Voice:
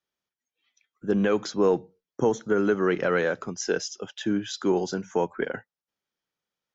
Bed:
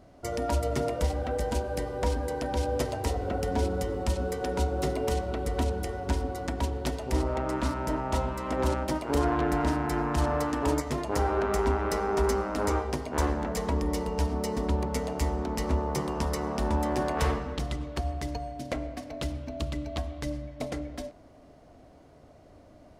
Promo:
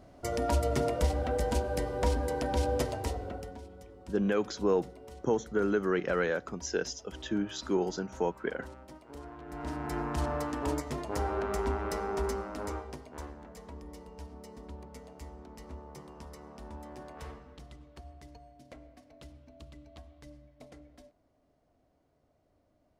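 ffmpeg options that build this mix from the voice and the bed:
ffmpeg -i stem1.wav -i stem2.wav -filter_complex "[0:a]adelay=3050,volume=-5.5dB[link_01];[1:a]volume=14.5dB,afade=type=out:start_time=2.69:duration=0.91:silence=0.1,afade=type=in:start_time=9.45:duration=0.51:silence=0.177828,afade=type=out:start_time=12.02:duration=1.29:silence=0.237137[link_02];[link_01][link_02]amix=inputs=2:normalize=0" out.wav

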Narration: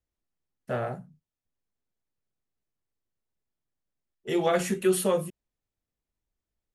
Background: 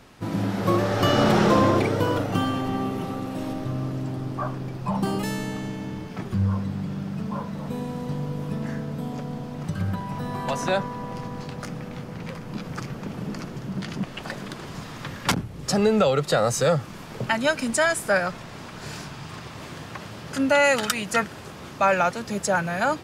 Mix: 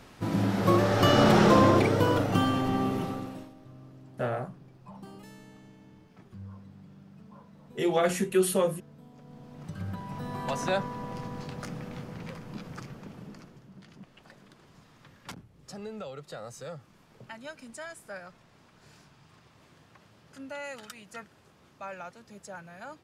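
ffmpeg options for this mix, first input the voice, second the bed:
ffmpeg -i stem1.wav -i stem2.wav -filter_complex "[0:a]adelay=3500,volume=-0.5dB[link_01];[1:a]volume=15.5dB,afade=type=out:start_time=2.96:duration=0.54:silence=0.1,afade=type=in:start_time=9.16:duration=1.41:silence=0.149624,afade=type=out:start_time=11.96:duration=1.71:silence=0.158489[link_02];[link_01][link_02]amix=inputs=2:normalize=0" out.wav

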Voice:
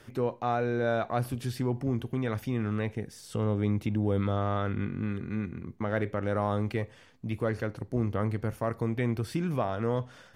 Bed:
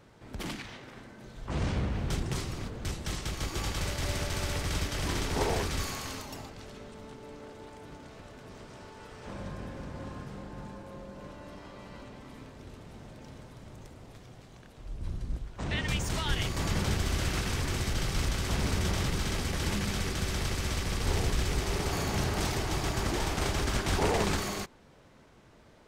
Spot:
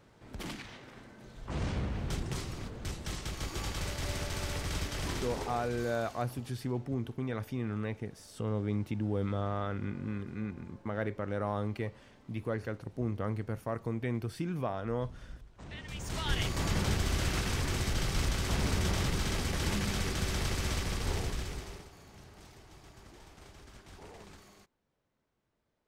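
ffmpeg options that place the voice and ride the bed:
ffmpeg -i stem1.wav -i stem2.wav -filter_complex "[0:a]adelay=5050,volume=-5dB[link_01];[1:a]volume=8.5dB,afade=type=out:start_time=5.06:duration=0.48:silence=0.334965,afade=type=in:start_time=15.91:duration=0.44:silence=0.251189,afade=type=out:start_time=20.72:duration=1.18:silence=0.0749894[link_02];[link_01][link_02]amix=inputs=2:normalize=0" out.wav

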